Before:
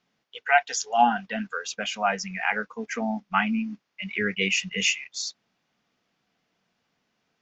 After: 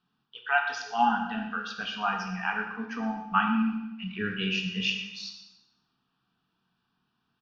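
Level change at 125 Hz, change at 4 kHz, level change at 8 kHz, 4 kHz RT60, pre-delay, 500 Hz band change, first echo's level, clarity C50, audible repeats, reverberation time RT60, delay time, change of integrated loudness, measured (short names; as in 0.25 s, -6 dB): +1.0 dB, -3.0 dB, n/a, 0.85 s, 15 ms, -8.5 dB, -14.0 dB, 5.0 dB, 1, 0.95 s, 0.121 s, -3.5 dB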